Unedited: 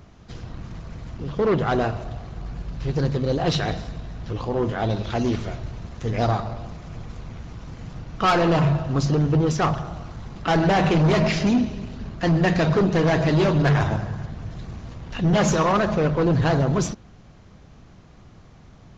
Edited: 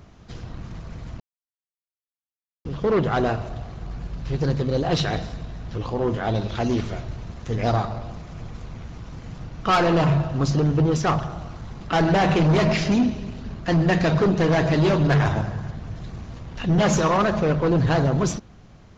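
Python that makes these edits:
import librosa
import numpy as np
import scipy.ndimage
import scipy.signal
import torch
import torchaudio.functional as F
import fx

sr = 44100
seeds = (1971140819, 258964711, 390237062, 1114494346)

y = fx.edit(x, sr, fx.insert_silence(at_s=1.2, length_s=1.45), tone=tone)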